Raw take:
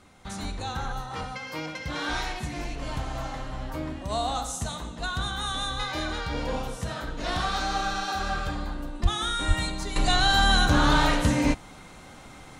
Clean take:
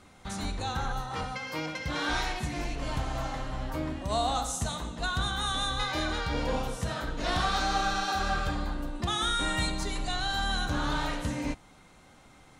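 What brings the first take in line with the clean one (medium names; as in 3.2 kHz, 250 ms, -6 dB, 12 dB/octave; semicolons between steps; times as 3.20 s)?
9.02–9.14 s: high-pass 140 Hz 24 dB/octave; 9.47–9.59 s: high-pass 140 Hz 24 dB/octave; 9.96 s: gain correction -9.5 dB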